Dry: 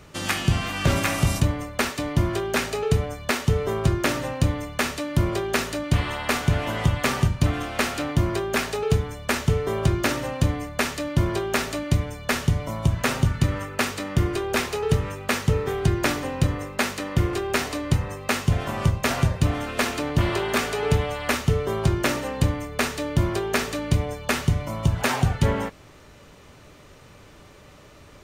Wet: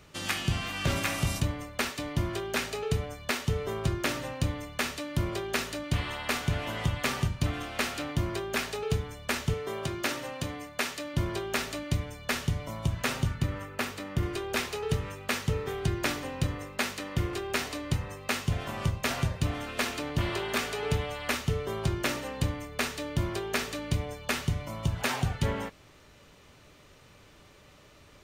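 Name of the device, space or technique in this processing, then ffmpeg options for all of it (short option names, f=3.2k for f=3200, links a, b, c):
presence and air boost: -filter_complex "[0:a]asettb=1/sr,asplit=3[a][b][c];[a]atrim=end=13.344[d];[b]atrim=start=13.34:end=14.23,asetpts=PTS-STARTPTS,afade=t=in:d=0.004:c=qsin,afade=t=out:st=0.886:d=0.004:c=qsin,equalizer=f=6.1k:t=o:w=2.8:g=-5[e];[c]atrim=start=14.226[f];[d][e]acrossfade=d=0.004:c1=hsin:c2=qsin[g];[g][f]acrossfade=d=0.004:c1=qsin:c2=hsin,equalizer=f=3.4k:t=o:w=1.8:g=4,highshelf=f=12k:g=4.5,asettb=1/sr,asplit=3[h][i][j];[h]atrim=end=9.544[k];[i]atrim=start=9.54:end=11.14,asetpts=PTS-STARTPTS,afade=t=in:d=0.004:c=qsin,afade=t=out:st=1.596:d=0.004:c=qsin,highpass=f=240:p=1[l];[j]atrim=start=11.136[m];[k][l]acrossfade=d=0.004:c1=hsin:c2=qsin[n];[n][m]acrossfade=d=0.004:c1=qsin:c2=hsin,volume=-8dB"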